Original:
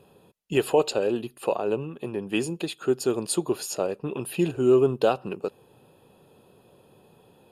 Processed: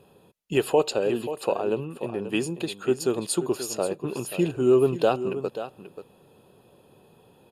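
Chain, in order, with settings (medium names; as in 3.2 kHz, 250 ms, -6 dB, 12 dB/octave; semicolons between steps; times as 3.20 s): delay 534 ms -11.5 dB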